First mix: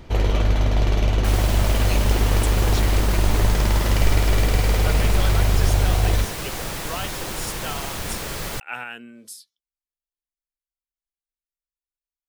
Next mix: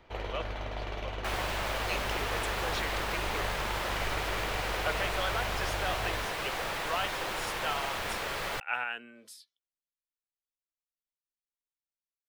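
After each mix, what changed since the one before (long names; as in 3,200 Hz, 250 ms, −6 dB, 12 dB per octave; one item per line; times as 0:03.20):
first sound −8.0 dB
master: add three-way crossover with the lows and the highs turned down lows −13 dB, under 460 Hz, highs −13 dB, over 3,800 Hz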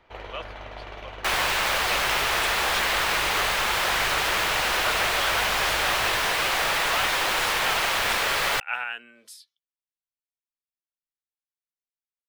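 first sound: add high-shelf EQ 2,700 Hz −9 dB
second sound +8.0 dB
master: add tilt shelving filter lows −5 dB, about 680 Hz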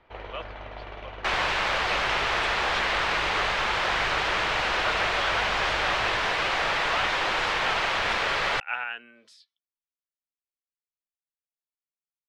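master: add high-frequency loss of the air 140 metres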